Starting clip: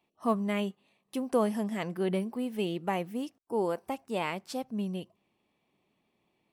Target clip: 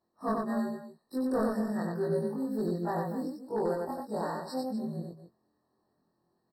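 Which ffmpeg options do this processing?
ffmpeg -i in.wav -filter_complex "[0:a]afftfilt=real='re':imag='-im':win_size=2048:overlap=0.75,acontrast=40,asoftclip=type=hard:threshold=-21.5dB,asplit=2[link_01][link_02];[link_02]aecho=0:1:93.29|244.9:0.708|0.251[link_03];[link_01][link_03]amix=inputs=2:normalize=0,afftfilt=real='re*eq(mod(floor(b*sr/1024/1900),2),0)':imag='im*eq(mod(floor(b*sr/1024/1900),2),0)':win_size=1024:overlap=0.75,volume=-3dB" out.wav

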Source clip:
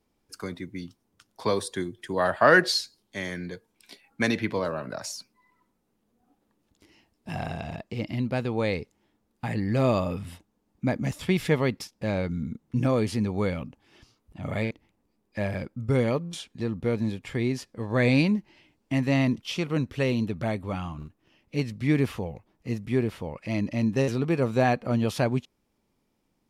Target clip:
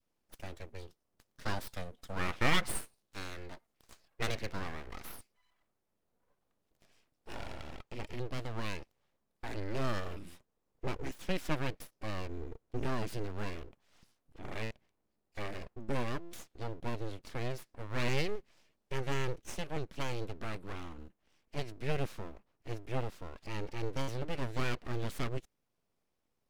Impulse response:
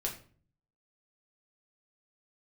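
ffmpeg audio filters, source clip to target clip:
-af "aeval=exprs='abs(val(0))':channel_layout=same,adynamicequalizer=threshold=0.00631:dfrequency=830:dqfactor=1.3:tfrequency=830:tqfactor=1.3:attack=5:release=100:ratio=0.375:range=3:mode=cutabove:tftype=bell,volume=-7.5dB"

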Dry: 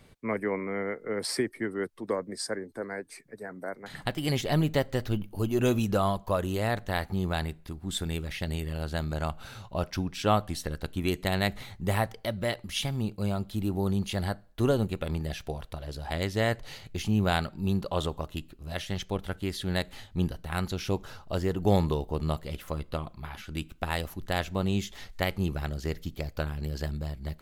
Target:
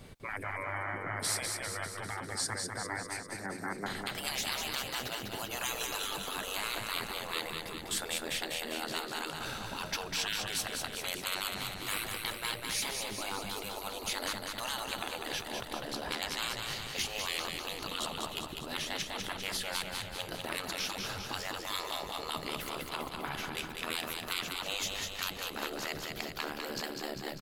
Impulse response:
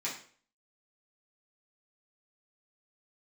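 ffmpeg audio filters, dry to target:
-filter_complex "[0:a]afftfilt=real='re*lt(hypot(re,im),0.0447)':imag='im*lt(hypot(re,im),0.0447)':win_size=1024:overlap=0.75,adynamicequalizer=threshold=0.00316:dfrequency=1900:dqfactor=1.4:tfrequency=1900:tqfactor=1.4:attack=5:release=100:ratio=0.375:range=1.5:mode=cutabove:tftype=bell,asplit=2[link_01][link_02];[link_02]alimiter=level_in=3dB:limit=-24dB:level=0:latency=1:release=474,volume=-3dB,volume=-1dB[link_03];[link_01][link_03]amix=inputs=2:normalize=0,aecho=1:1:199|398|597|796|995|1194|1393|1592|1791:0.596|0.357|0.214|0.129|0.0772|0.0463|0.0278|0.0167|0.01"

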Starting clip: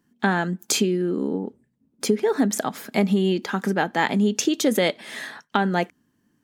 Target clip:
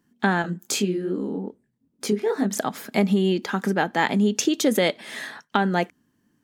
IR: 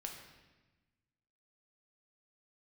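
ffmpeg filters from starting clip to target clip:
-filter_complex "[0:a]asettb=1/sr,asplit=3[link_01][link_02][link_03];[link_01]atrim=end=0.424[link_04];[link_02]atrim=start=0.42:end=2.57,asetpts=PTS-STARTPTS,afade=type=in:duration=0.004:curve=qsin,afade=type=out:start_time=2.146:duration=0.004:curve=qsin,flanger=delay=19.5:depth=6.7:speed=2.5[link_05];[link_03]atrim=start=2.566[link_06];[link_04][link_05]acrossfade=duration=0.004:curve1=hsin:curve2=qsin[link_07];[link_07][link_06]acrossfade=duration=0.004:curve1=qsin:curve2=hsin"

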